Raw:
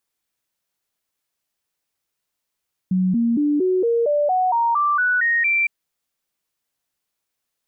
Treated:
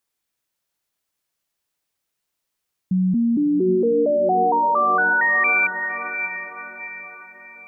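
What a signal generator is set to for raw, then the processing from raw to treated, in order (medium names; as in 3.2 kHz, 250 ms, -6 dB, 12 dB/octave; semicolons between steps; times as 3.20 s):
stepped sine 185 Hz up, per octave 3, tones 12, 0.23 s, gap 0.00 s -15.5 dBFS
echo that smears into a reverb 614 ms, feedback 46%, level -8 dB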